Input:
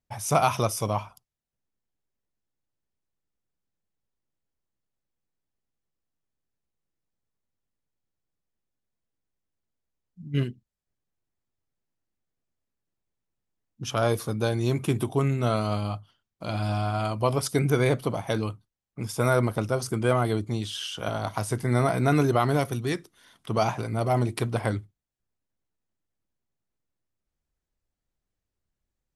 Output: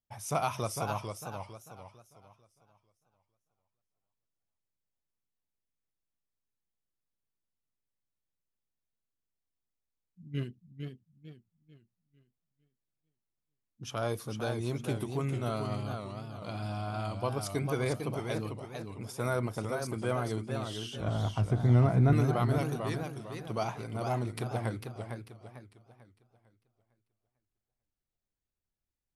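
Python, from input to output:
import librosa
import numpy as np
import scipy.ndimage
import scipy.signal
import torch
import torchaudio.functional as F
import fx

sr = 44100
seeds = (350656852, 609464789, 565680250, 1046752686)

y = fx.riaa(x, sr, side='playback', at=(21.0, 22.13))
y = fx.echo_warbled(y, sr, ms=449, feedback_pct=36, rate_hz=2.8, cents=147, wet_db=-6.0)
y = F.gain(torch.from_numpy(y), -9.0).numpy()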